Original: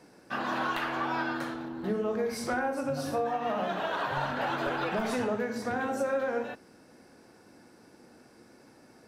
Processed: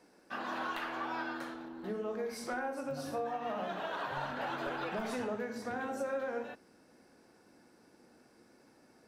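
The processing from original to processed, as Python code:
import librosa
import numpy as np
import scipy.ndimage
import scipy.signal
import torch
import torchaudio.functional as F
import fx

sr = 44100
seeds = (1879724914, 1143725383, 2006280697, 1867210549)

y = fx.peak_eq(x, sr, hz=110.0, db=fx.steps((0.0, -14.5), (2.91, -4.0)), octaves=0.8)
y = y * librosa.db_to_amplitude(-6.5)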